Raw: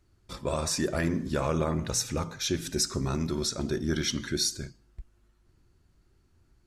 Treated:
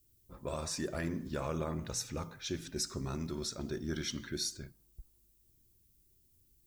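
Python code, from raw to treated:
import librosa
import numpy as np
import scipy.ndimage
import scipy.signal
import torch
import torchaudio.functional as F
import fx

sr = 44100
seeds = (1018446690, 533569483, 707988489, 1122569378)

y = fx.env_lowpass(x, sr, base_hz=440.0, full_db=-25.5)
y = fx.dmg_noise_colour(y, sr, seeds[0], colour='violet', level_db=-62.0)
y = y * 10.0 ** (-8.5 / 20.0)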